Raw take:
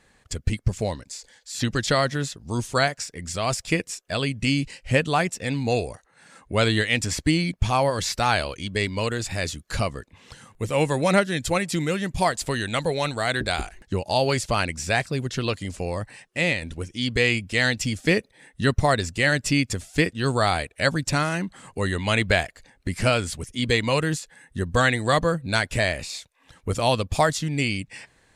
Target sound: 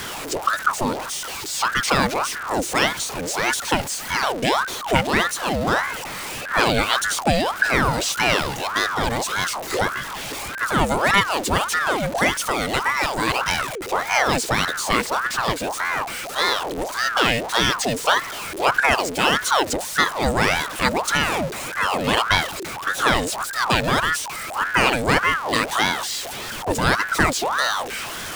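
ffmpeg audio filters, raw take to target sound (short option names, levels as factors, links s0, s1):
-af "aeval=exprs='val(0)+0.5*0.0501*sgn(val(0))':c=same,aeval=exprs='val(0)*sin(2*PI*970*n/s+970*0.65/1.7*sin(2*PI*1.7*n/s))':c=same,volume=1.5"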